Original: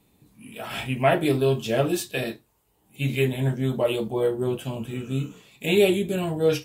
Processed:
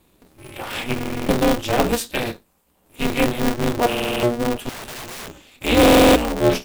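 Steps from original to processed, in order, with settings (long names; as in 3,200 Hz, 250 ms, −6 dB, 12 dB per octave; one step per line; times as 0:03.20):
0:04.69–0:05.28: wrap-around overflow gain 33 dB
buffer that repeats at 0:00.94/0:03.88/0:05.81, samples 1,024, times 14
ring modulator with a square carrier 120 Hz
level +4 dB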